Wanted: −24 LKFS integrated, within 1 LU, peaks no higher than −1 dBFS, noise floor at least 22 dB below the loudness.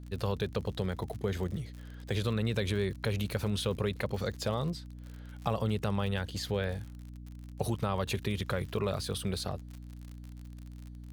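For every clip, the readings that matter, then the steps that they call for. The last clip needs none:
crackle rate 54 per second; mains hum 60 Hz; hum harmonics up to 300 Hz; level of the hum −42 dBFS; integrated loudness −34.0 LKFS; sample peak −14.5 dBFS; target loudness −24.0 LKFS
→ click removal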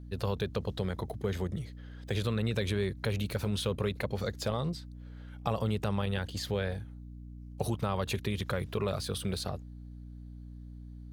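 crackle rate 0.63 per second; mains hum 60 Hz; hum harmonics up to 300 Hz; level of the hum −43 dBFS
→ mains-hum notches 60/120/180/240/300 Hz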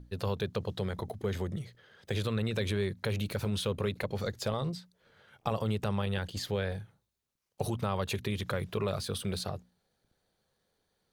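mains hum none found; integrated loudness −34.5 LKFS; sample peak −15.0 dBFS; target loudness −24.0 LKFS
→ level +10.5 dB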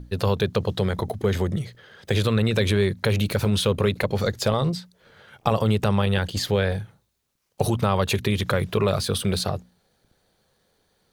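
integrated loudness −24.0 LKFS; sample peak −4.5 dBFS; background noise floor −70 dBFS

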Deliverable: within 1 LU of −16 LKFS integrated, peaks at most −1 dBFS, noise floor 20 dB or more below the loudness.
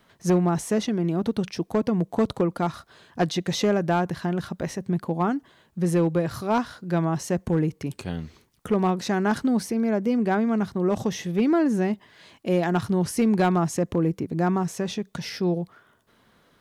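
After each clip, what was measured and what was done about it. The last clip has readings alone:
share of clipped samples 0.4%; peaks flattened at −14.5 dBFS; integrated loudness −25.0 LKFS; sample peak −14.5 dBFS; target loudness −16.0 LKFS
→ clipped peaks rebuilt −14.5 dBFS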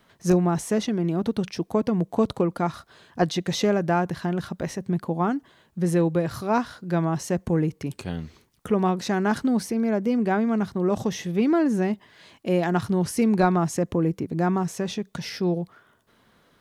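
share of clipped samples 0.0%; integrated loudness −25.0 LKFS; sample peak −7.5 dBFS; target loudness −16.0 LKFS
→ level +9 dB
brickwall limiter −1 dBFS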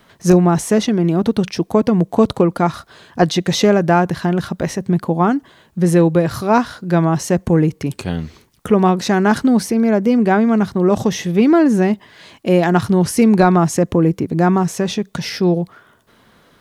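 integrated loudness −16.0 LKFS; sample peak −1.0 dBFS; background noise floor −53 dBFS

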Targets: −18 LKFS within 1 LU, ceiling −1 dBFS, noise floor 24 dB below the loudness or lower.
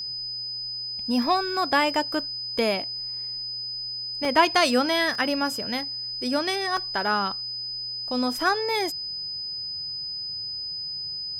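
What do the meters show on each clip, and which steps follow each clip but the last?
number of dropouts 4; longest dropout 1.5 ms; interfering tone 5,000 Hz; level of the tone −30 dBFS; integrated loudness −25.5 LKFS; sample peak −6.5 dBFS; target loudness −18.0 LKFS
→ repair the gap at 0:04.25/0:05.15/0:06.77/0:08.40, 1.5 ms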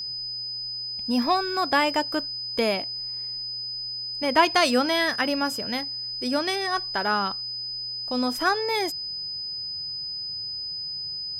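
number of dropouts 0; interfering tone 5,000 Hz; level of the tone −30 dBFS
→ notch filter 5,000 Hz, Q 30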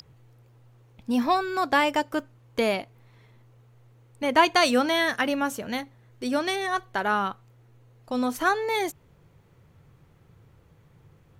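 interfering tone none found; integrated loudness −25.5 LKFS; sample peak −6.5 dBFS; target loudness −18.0 LKFS
→ level +7.5 dB
brickwall limiter −1 dBFS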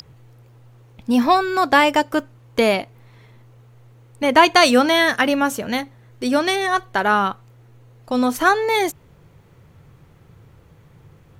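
integrated loudness −18.0 LKFS; sample peak −1.0 dBFS; background noise floor −51 dBFS

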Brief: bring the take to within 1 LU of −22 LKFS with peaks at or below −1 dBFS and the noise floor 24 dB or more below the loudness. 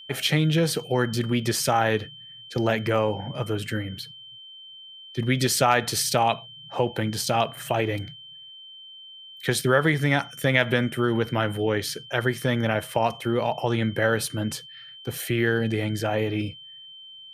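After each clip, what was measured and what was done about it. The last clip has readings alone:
interfering tone 3,100 Hz; level of the tone −42 dBFS; integrated loudness −24.5 LKFS; sample peak −5.0 dBFS; target loudness −22.0 LKFS
→ notch filter 3,100 Hz, Q 30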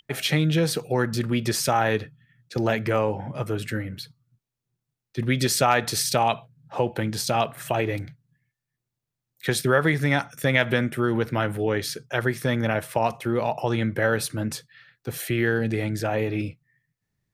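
interfering tone none found; integrated loudness −24.5 LKFS; sample peak −5.0 dBFS; target loudness −22.0 LKFS
→ level +2.5 dB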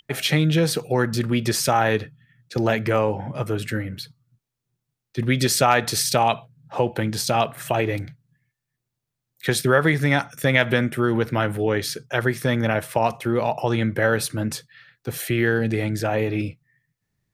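integrated loudness −22.0 LKFS; sample peak −2.5 dBFS; background noise floor −83 dBFS

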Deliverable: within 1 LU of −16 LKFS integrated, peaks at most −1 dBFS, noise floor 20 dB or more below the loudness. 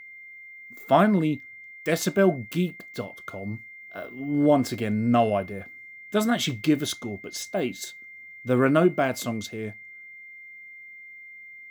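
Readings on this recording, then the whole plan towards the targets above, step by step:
interfering tone 2,100 Hz; level of the tone −42 dBFS; integrated loudness −25.0 LKFS; sample peak −6.0 dBFS; target loudness −16.0 LKFS
→ notch filter 2,100 Hz, Q 30
level +9 dB
brickwall limiter −1 dBFS

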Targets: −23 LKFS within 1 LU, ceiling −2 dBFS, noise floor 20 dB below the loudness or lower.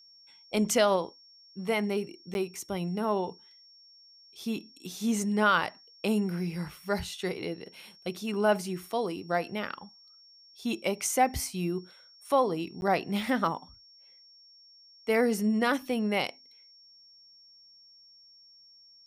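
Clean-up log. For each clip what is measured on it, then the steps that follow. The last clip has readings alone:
number of dropouts 2; longest dropout 11 ms; interfering tone 5,500 Hz; level of the tone −54 dBFS; integrated loudness −30.0 LKFS; sample peak −12.5 dBFS; target loudness −23.0 LKFS
→ repair the gap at 0:02.34/0:12.81, 11 ms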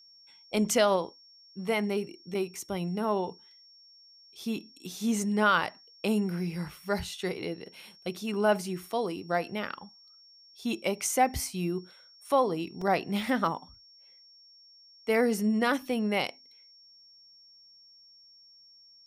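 number of dropouts 0; interfering tone 5,500 Hz; level of the tone −54 dBFS
→ notch filter 5,500 Hz, Q 30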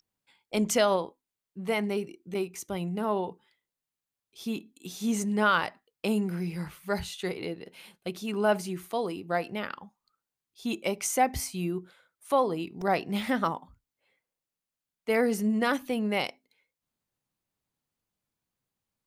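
interfering tone none found; integrated loudness −30.0 LKFS; sample peak −12.5 dBFS; target loudness −23.0 LKFS
→ level +7 dB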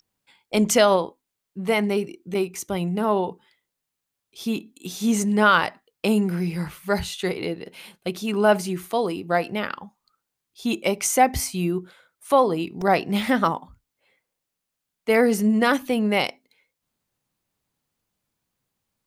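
integrated loudness −23.0 LKFS; sample peak −5.5 dBFS; background noise floor −83 dBFS

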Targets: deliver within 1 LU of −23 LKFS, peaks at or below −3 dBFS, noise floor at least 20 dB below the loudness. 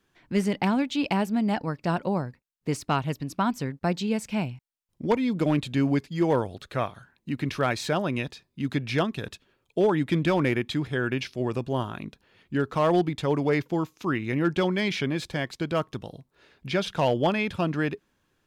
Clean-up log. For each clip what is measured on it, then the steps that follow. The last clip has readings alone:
share of clipped samples 0.3%; peaks flattened at −15.0 dBFS; integrated loudness −27.0 LKFS; sample peak −15.0 dBFS; target loudness −23.0 LKFS
→ clipped peaks rebuilt −15 dBFS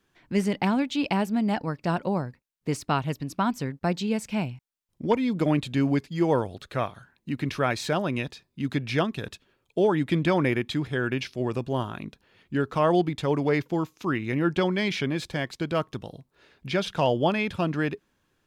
share of clipped samples 0.0%; integrated loudness −27.0 LKFS; sample peak −11.0 dBFS; target loudness −23.0 LKFS
→ level +4 dB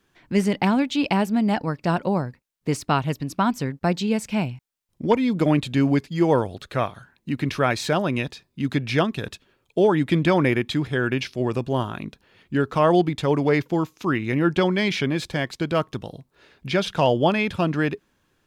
integrated loudness −23.0 LKFS; sample peak −7.0 dBFS; background noise floor −70 dBFS

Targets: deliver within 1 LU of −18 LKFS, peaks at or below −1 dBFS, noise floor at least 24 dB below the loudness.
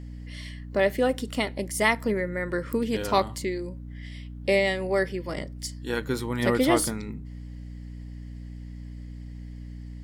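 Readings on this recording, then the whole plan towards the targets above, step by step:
mains hum 60 Hz; hum harmonics up to 300 Hz; level of the hum −36 dBFS; integrated loudness −26.5 LKFS; sample peak −7.5 dBFS; target loudness −18.0 LKFS
→ mains-hum notches 60/120/180/240/300 Hz
level +8.5 dB
brickwall limiter −1 dBFS

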